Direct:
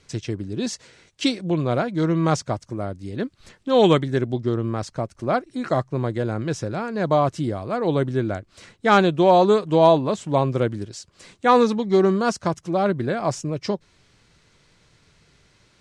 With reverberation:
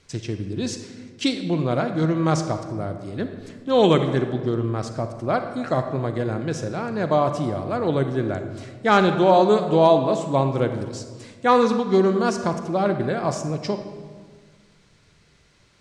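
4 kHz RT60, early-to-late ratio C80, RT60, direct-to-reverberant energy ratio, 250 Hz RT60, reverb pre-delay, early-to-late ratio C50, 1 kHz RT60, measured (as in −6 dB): 1.0 s, 9.5 dB, 1.6 s, 7.0 dB, 2.0 s, 34 ms, 8.0 dB, 1.5 s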